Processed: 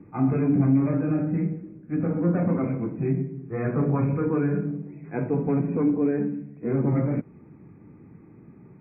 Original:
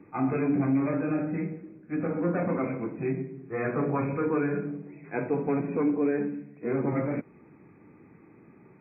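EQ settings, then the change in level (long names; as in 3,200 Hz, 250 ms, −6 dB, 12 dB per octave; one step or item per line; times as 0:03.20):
bass and treble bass +10 dB, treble −8 dB
high-shelf EQ 2,200 Hz −8.5 dB
0.0 dB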